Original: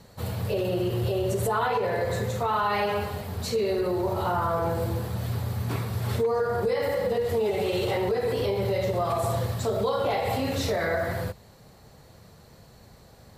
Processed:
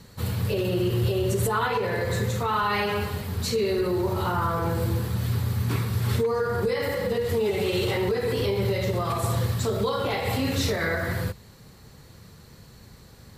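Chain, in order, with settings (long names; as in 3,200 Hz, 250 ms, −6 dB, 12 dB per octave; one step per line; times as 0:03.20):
parametric band 670 Hz −10 dB 0.85 octaves
level +4 dB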